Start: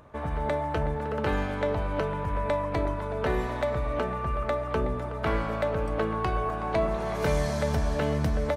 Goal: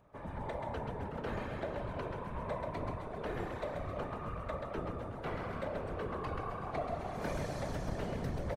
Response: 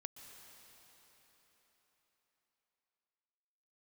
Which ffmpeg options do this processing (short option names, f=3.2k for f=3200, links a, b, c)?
-filter_complex "[0:a]asplit=8[a][b][c][d][e][f][g][h];[b]adelay=133,afreqshift=30,volume=-5dB[i];[c]adelay=266,afreqshift=60,volume=-10.7dB[j];[d]adelay=399,afreqshift=90,volume=-16.4dB[k];[e]adelay=532,afreqshift=120,volume=-22dB[l];[f]adelay=665,afreqshift=150,volume=-27.7dB[m];[g]adelay=798,afreqshift=180,volume=-33.4dB[n];[h]adelay=931,afreqshift=210,volume=-39.1dB[o];[a][i][j][k][l][m][n][o]amix=inputs=8:normalize=0,afftfilt=real='hypot(re,im)*cos(2*PI*random(0))':imag='hypot(re,im)*sin(2*PI*random(1))':win_size=512:overlap=0.75,volume=-6.5dB"